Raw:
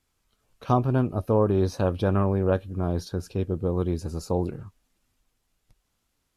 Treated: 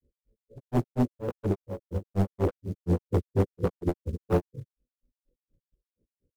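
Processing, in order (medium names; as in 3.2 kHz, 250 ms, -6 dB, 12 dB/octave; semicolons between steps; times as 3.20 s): partials quantised in pitch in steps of 2 st; reverb removal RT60 0.68 s; steep low-pass 560 Hz 96 dB/octave; in parallel at +1.5 dB: compression 8:1, threshold -32 dBFS, peak gain reduction 13 dB; on the sum: one-sided clip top -22 dBFS; short-mantissa float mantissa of 4-bit; pre-echo 121 ms -14 dB; wavefolder -20 dBFS; granulator 132 ms, grains 4.2 per s, spray 11 ms, pitch spread up and down by 0 st; trim +5 dB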